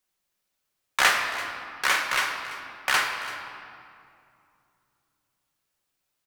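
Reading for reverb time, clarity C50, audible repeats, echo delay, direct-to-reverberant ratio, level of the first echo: 2.5 s, 4.5 dB, 1, 336 ms, 1.5 dB, -16.5 dB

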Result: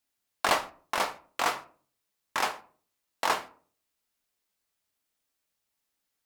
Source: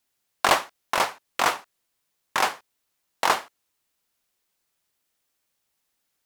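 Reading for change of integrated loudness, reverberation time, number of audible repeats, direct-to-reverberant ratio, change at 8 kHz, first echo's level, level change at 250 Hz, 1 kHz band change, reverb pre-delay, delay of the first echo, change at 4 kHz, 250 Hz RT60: -5.5 dB, 0.45 s, no echo, 7.5 dB, -5.5 dB, no echo, -4.5 dB, -5.5 dB, 3 ms, no echo, -5.5 dB, 0.55 s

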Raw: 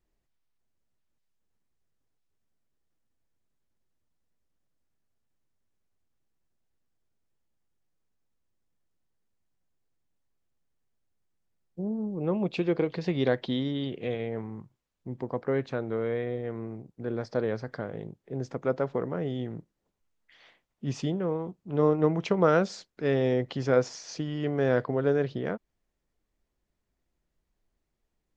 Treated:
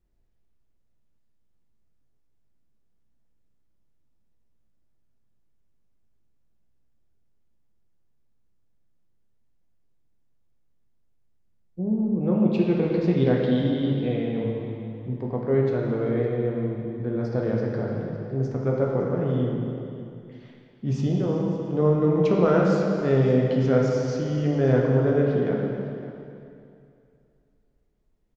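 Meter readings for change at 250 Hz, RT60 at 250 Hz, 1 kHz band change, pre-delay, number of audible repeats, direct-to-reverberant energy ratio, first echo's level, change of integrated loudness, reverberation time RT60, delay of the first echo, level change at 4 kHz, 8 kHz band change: +7.0 dB, 2.5 s, +1.5 dB, 5 ms, 1, -2.5 dB, -16.0 dB, +5.5 dB, 2.5 s, 558 ms, -1.0 dB, no reading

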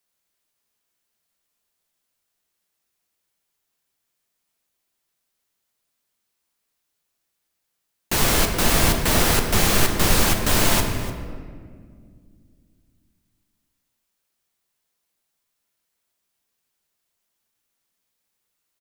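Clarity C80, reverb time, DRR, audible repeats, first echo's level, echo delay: 7.0 dB, 2.0 s, 3.5 dB, 1, -16.0 dB, 296 ms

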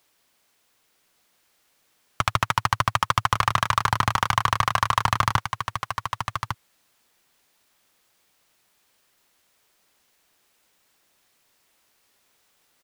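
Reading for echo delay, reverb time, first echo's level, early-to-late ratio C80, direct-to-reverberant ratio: 1153 ms, no reverb, -7.5 dB, no reverb, no reverb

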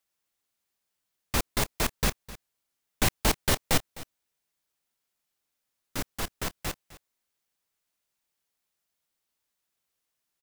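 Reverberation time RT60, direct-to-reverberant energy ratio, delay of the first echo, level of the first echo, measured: no reverb, no reverb, 257 ms, -18.0 dB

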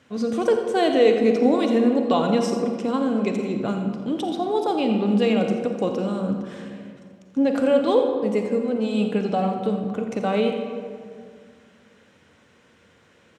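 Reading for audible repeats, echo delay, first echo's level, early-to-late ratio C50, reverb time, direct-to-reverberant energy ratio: 1, 85 ms, -12.5 dB, 4.5 dB, 2.1 s, 4.0 dB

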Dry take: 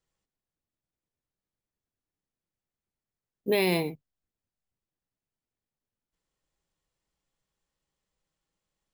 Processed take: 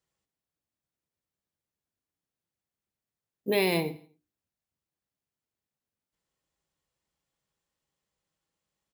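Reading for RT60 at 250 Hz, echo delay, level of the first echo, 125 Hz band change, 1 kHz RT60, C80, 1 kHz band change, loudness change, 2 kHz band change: no reverb, 83 ms, -19.5 dB, -1.5 dB, no reverb, no reverb, 0.0 dB, -0.5 dB, 0.0 dB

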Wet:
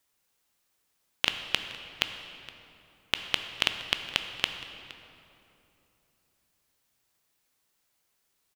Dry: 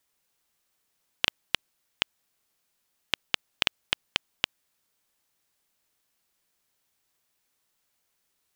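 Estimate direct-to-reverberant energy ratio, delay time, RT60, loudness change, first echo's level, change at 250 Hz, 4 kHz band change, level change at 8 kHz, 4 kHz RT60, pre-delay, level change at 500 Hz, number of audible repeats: 6.5 dB, 467 ms, 3.0 s, +0.5 dB, -19.5 dB, +1.0 dB, +0.5 dB, +0.5 dB, 1.8 s, 12 ms, +1.0 dB, 1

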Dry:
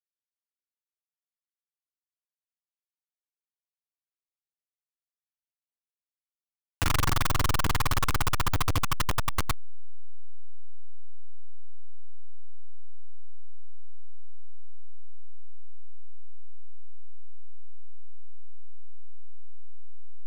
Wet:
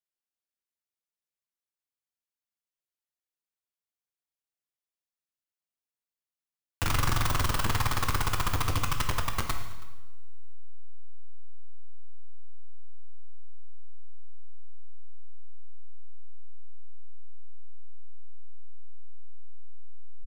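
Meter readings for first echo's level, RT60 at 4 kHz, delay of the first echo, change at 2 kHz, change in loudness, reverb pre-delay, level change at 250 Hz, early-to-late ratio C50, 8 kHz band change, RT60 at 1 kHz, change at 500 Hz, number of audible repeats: -22.5 dB, 1.0 s, 324 ms, -1.0 dB, -1.0 dB, 4 ms, -1.5 dB, 7.5 dB, -1.5 dB, 1.1 s, -1.0 dB, 1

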